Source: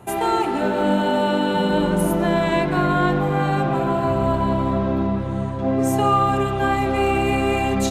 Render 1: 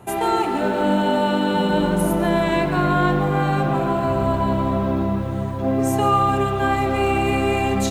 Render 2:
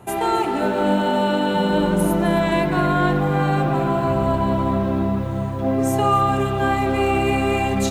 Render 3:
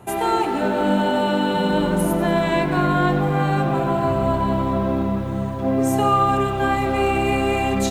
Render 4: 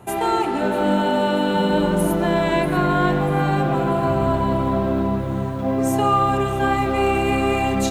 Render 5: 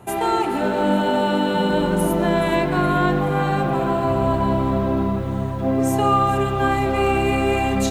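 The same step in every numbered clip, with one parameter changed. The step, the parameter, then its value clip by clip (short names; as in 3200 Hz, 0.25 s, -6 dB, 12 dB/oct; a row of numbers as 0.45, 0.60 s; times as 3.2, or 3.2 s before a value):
lo-fi delay, time: 141, 263, 95, 641, 423 ms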